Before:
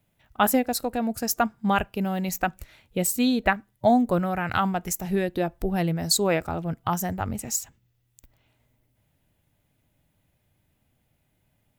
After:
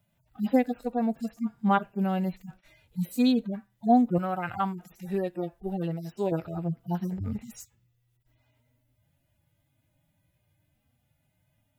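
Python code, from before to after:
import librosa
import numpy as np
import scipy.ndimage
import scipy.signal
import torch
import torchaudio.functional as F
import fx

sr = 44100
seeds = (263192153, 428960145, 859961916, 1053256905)

y = fx.hpss_only(x, sr, part='harmonic')
y = fx.low_shelf(y, sr, hz=320.0, db=-8.0, at=(4.18, 6.32))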